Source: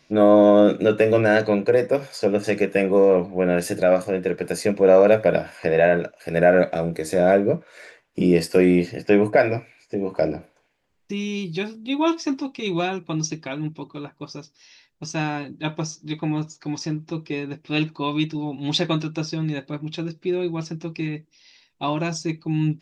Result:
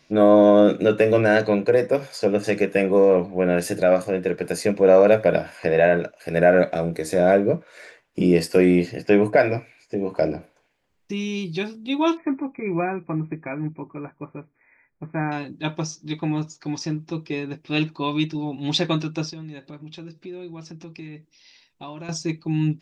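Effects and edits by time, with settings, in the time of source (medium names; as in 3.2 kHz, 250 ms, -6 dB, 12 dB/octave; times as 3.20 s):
12.17–15.32 s: brick-wall FIR low-pass 2.5 kHz
19.30–22.09 s: compression 2.5:1, threshold -39 dBFS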